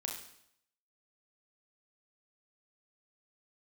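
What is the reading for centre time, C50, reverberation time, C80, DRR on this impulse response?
34 ms, 5.0 dB, 0.70 s, 8.0 dB, 0.5 dB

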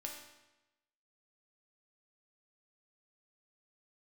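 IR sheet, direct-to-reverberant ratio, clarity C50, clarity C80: -0.5 dB, 4.0 dB, 6.5 dB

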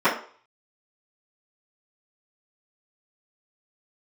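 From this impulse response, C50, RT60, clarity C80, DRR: 8.0 dB, 0.45 s, 12.5 dB, -15.0 dB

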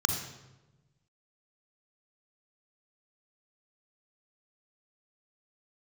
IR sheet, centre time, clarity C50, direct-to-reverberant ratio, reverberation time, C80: 33 ms, 4.5 dB, 3.5 dB, 1.1 s, 7.0 dB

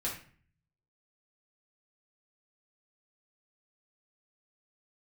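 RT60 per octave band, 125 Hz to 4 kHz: 1.0 s, 0.65 s, 0.45 s, 0.45 s, 0.50 s, 0.35 s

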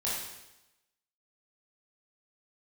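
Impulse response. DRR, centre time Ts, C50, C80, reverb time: -7.5 dB, 69 ms, 0.0 dB, 3.5 dB, 0.95 s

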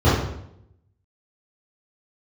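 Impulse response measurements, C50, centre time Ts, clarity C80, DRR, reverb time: 0.5 dB, 62 ms, 4.5 dB, -14.0 dB, 0.75 s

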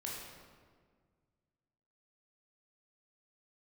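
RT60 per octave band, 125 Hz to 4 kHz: 2.5 s, 2.2 s, 1.8 s, 1.6 s, 1.3 s, 1.1 s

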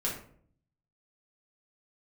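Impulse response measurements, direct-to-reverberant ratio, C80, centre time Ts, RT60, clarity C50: -4.0 dB, 10.0 dB, 31 ms, 0.55 s, 5.5 dB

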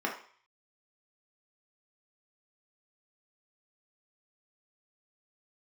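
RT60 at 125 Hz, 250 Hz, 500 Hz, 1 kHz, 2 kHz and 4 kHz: 0.55 s, 0.35 s, 0.45 s, 0.55 s, 0.55 s, 0.55 s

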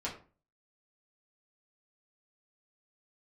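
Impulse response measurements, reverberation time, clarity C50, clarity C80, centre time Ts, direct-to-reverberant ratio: 0.40 s, 9.0 dB, 13.5 dB, 21 ms, -6.0 dB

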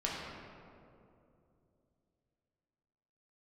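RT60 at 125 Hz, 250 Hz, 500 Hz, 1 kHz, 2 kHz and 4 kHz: 3.6 s, 3.4 s, 3.1 s, 2.3 s, 1.7 s, 1.2 s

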